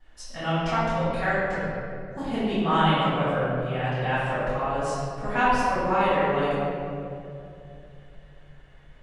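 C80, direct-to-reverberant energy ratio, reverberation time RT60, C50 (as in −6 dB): −1.5 dB, −16.5 dB, 2.7 s, −4.0 dB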